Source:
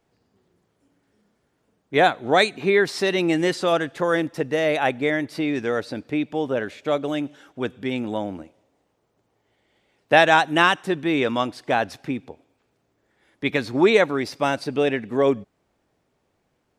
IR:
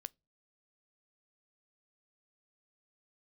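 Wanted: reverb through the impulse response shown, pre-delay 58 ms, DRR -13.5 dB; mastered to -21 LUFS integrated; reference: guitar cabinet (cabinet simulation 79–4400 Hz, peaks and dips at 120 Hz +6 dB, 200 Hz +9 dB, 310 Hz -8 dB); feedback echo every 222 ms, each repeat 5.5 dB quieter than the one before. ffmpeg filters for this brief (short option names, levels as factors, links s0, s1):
-filter_complex "[0:a]aecho=1:1:222|444|666|888|1110|1332|1554:0.531|0.281|0.149|0.079|0.0419|0.0222|0.0118,asplit=2[s0][s1];[1:a]atrim=start_sample=2205,adelay=58[s2];[s1][s2]afir=irnorm=-1:irlink=0,volume=7.94[s3];[s0][s3]amix=inputs=2:normalize=0,highpass=79,equalizer=f=120:t=q:w=4:g=6,equalizer=f=200:t=q:w=4:g=9,equalizer=f=310:t=q:w=4:g=-8,lowpass=f=4400:w=0.5412,lowpass=f=4400:w=1.3066,volume=0.211"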